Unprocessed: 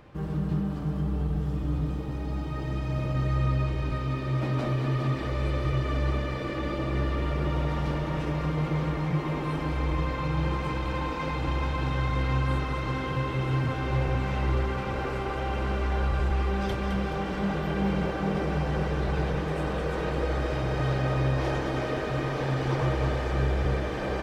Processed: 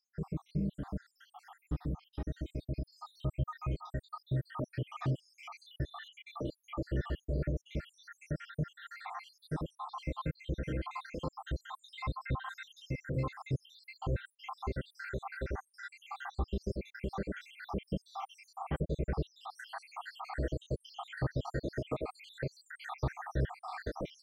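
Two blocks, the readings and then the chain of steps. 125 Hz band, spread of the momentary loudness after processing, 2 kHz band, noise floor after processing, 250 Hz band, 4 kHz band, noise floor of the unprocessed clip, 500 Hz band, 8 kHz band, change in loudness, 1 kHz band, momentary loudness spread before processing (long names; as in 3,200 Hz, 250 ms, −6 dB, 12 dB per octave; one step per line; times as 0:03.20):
−11.0 dB, 10 LU, −11.0 dB, −77 dBFS, −11.0 dB, −11.0 dB, −32 dBFS, −11.0 dB, can't be measured, −11.0 dB, −11.0 dB, 4 LU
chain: time-frequency cells dropped at random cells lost 82%
parametric band 2,500 Hz −6 dB 0.34 octaves
in parallel at −1 dB: downward compressor, threshold −38 dBFS, peak gain reduction 15.5 dB
on the sum: level −6 dB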